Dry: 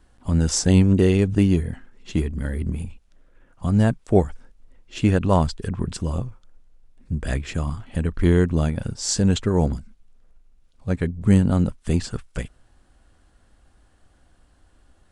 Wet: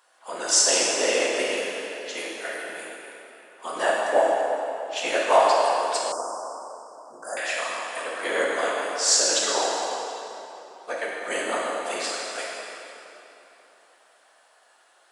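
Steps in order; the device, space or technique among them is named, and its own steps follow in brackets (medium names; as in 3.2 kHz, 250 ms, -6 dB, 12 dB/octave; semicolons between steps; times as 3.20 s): whispering ghost (whisper effect; high-pass 600 Hz 24 dB/octave; reverberation RT60 3.3 s, pre-delay 6 ms, DRR -5 dB); 6.12–7.37 s: elliptic band-stop 1.4–5.5 kHz, stop band 40 dB; trim +2.5 dB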